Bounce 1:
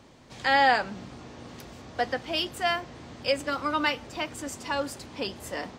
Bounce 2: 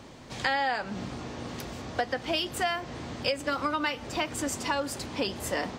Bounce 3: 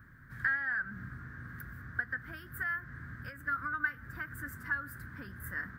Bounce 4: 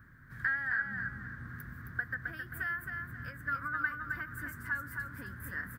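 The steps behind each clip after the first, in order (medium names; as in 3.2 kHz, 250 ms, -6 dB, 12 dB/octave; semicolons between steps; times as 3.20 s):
compression 10:1, threshold -31 dBFS, peak gain reduction 14.5 dB; trim +6 dB
FFT filter 130 Hz 0 dB, 560 Hz -25 dB, 840 Hz -25 dB, 1.6 kHz +10 dB, 2.6 kHz -26 dB, 7 kHz -26 dB, 14 kHz +3 dB; trim -3 dB
feedback delay 266 ms, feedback 33%, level -5 dB; trim -1 dB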